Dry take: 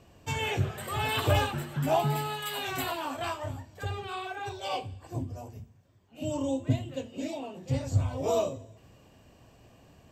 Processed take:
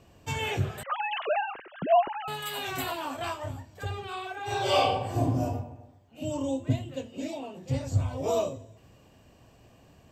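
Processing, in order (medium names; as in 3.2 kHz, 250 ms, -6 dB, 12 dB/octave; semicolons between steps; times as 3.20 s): 0.83–2.28 s: formants replaced by sine waves; 4.44–5.44 s: reverb throw, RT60 0.95 s, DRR -11 dB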